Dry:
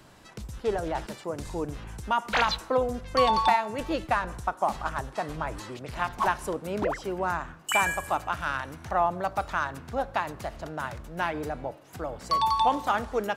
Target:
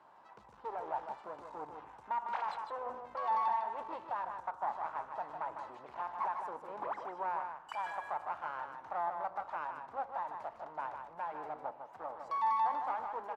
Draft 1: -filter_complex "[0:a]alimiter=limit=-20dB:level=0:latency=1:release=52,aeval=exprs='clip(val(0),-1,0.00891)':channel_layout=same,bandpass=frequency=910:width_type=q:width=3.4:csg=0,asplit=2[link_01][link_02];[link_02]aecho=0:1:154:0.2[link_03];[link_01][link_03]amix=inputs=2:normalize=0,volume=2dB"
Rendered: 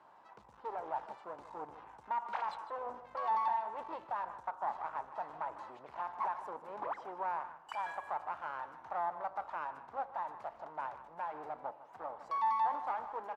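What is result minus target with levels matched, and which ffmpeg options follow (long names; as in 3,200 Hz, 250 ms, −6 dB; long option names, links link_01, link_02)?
echo-to-direct −7.5 dB
-filter_complex "[0:a]alimiter=limit=-20dB:level=0:latency=1:release=52,aeval=exprs='clip(val(0),-1,0.00891)':channel_layout=same,bandpass=frequency=910:width_type=q:width=3.4:csg=0,asplit=2[link_01][link_02];[link_02]aecho=0:1:154:0.473[link_03];[link_01][link_03]amix=inputs=2:normalize=0,volume=2dB"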